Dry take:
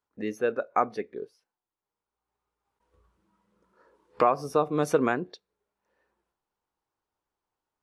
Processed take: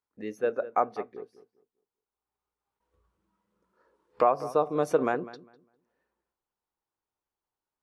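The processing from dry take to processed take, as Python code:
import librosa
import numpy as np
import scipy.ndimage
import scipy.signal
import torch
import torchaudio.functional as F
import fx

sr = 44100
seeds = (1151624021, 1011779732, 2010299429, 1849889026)

y = fx.echo_filtered(x, sr, ms=201, feedback_pct=25, hz=1900.0, wet_db=-14.0)
y = fx.dynamic_eq(y, sr, hz=650.0, q=0.87, threshold_db=-35.0, ratio=4.0, max_db=7)
y = y * librosa.db_to_amplitude(-6.0)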